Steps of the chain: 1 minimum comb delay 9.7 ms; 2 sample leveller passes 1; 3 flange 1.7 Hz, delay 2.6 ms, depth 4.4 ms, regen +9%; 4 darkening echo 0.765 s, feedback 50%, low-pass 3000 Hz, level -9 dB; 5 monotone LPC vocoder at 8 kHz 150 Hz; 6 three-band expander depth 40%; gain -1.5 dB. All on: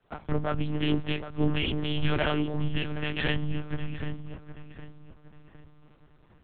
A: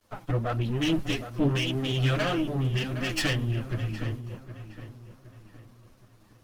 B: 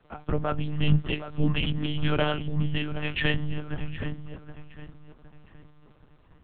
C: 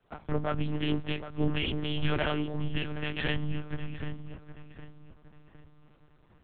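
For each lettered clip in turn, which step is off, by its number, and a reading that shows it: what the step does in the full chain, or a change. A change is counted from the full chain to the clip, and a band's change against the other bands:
5, 125 Hz band +3.0 dB; 1, 125 Hz band +2.5 dB; 2, loudness change -2.5 LU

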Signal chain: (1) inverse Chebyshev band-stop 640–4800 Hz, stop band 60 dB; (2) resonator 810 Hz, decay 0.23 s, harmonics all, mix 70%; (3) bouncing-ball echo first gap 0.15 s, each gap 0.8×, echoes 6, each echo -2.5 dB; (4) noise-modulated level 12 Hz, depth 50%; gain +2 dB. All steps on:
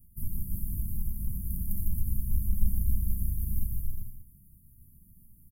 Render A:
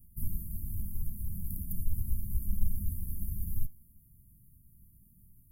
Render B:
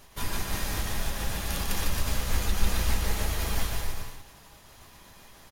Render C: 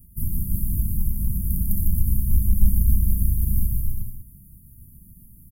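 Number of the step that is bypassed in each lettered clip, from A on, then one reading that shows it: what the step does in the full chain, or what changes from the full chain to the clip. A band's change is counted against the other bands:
3, loudness change -4.5 LU; 1, momentary loudness spread change +7 LU; 2, loudness change +9.5 LU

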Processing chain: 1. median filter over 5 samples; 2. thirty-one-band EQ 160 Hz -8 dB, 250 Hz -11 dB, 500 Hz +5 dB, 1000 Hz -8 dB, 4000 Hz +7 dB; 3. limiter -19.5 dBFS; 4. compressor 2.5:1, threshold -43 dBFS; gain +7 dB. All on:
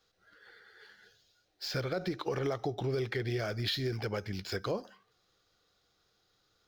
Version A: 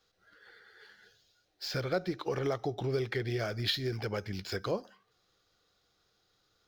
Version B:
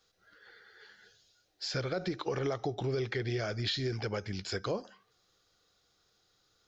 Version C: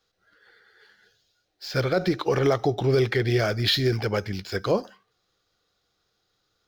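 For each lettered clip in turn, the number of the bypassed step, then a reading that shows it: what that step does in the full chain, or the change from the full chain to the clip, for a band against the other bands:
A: 3, crest factor change +3.0 dB; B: 1, 8 kHz band +2.5 dB; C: 4, mean gain reduction 9.0 dB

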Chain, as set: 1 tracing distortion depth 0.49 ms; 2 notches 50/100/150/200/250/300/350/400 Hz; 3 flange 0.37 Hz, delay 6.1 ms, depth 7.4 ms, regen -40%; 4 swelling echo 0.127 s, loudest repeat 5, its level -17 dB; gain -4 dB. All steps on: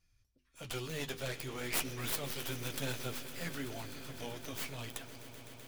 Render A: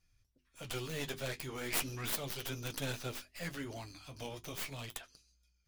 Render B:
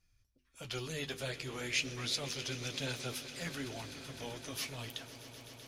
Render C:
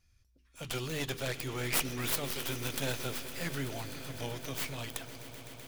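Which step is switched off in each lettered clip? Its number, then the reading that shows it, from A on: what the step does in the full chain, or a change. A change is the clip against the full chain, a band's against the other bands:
4, echo-to-direct -7.5 dB to none; 1, 4 kHz band +4.5 dB; 3, loudness change +4.0 LU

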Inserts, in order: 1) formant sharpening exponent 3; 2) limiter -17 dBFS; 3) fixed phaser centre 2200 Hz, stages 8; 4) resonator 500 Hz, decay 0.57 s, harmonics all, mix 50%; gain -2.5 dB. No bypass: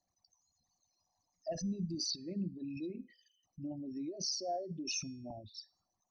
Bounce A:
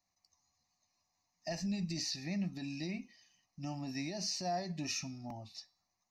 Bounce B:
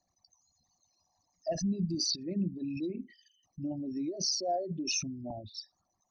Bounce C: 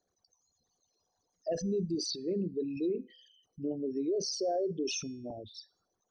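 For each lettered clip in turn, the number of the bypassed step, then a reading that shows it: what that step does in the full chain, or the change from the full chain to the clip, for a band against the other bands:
1, 2 kHz band +7.0 dB; 4, loudness change +6.0 LU; 3, 500 Hz band +9.0 dB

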